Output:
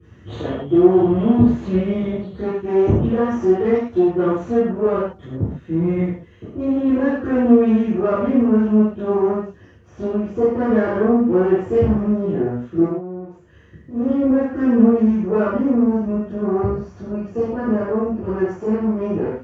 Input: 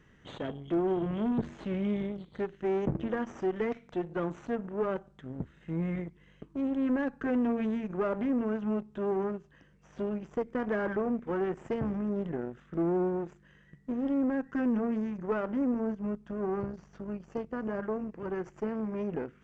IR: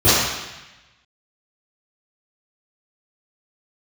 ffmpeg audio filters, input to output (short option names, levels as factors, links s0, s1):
-filter_complex "[0:a]asplit=3[s0][s1][s2];[s0]afade=t=out:st=12.84:d=0.02[s3];[s1]acompressor=threshold=0.00501:ratio=5,afade=t=in:st=12.84:d=0.02,afade=t=out:st=13.93:d=0.02[s4];[s2]afade=t=in:st=13.93:d=0.02[s5];[s3][s4][s5]amix=inputs=3:normalize=0[s6];[1:a]atrim=start_sample=2205,afade=t=out:st=0.21:d=0.01,atrim=end_sample=9702[s7];[s6][s7]afir=irnorm=-1:irlink=0,volume=0.2"